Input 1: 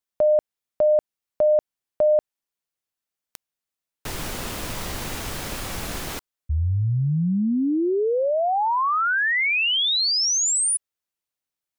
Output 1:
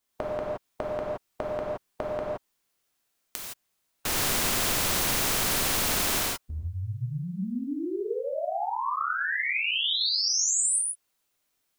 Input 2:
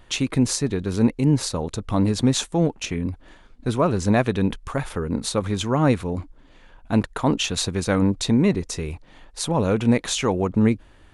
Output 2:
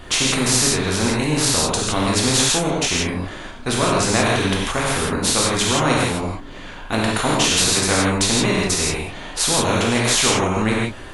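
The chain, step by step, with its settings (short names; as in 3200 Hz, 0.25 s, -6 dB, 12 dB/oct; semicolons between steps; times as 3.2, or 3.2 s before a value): non-linear reverb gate 0.19 s flat, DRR -4.5 dB; spectral compressor 2:1; gain -1 dB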